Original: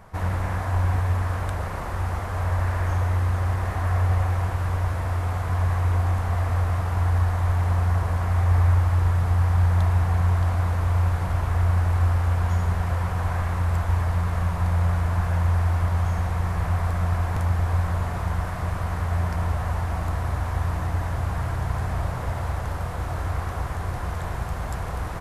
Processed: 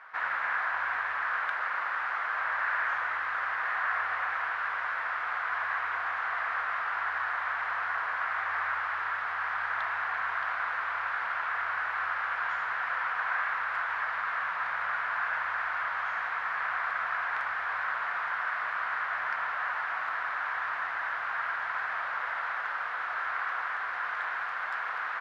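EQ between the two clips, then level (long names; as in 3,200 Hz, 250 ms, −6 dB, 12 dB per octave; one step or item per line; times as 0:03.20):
high-pass with resonance 1,500 Hz, resonance Q 2.6
high-frequency loss of the air 320 metres
+3.5 dB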